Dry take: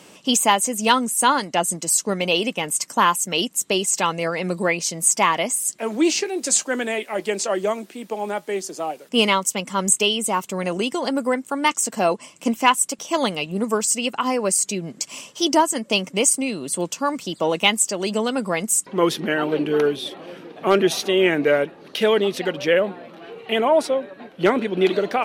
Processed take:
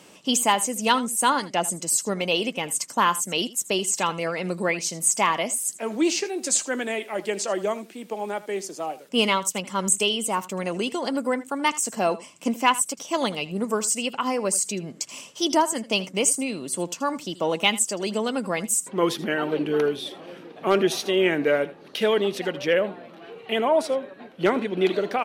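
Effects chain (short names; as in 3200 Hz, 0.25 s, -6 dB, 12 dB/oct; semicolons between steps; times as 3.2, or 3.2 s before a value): echo 80 ms -17.5 dB; gain -3.5 dB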